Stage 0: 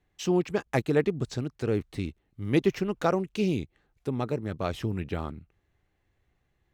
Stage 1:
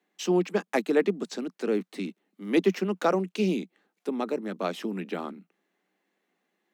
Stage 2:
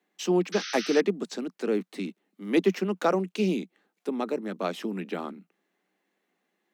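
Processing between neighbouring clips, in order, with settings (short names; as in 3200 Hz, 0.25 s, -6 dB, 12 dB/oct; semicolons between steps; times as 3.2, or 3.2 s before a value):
steep high-pass 180 Hz 96 dB/oct; gain +1.5 dB
painted sound noise, 0.52–1.01, 1200–6300 Hz -37 dBFS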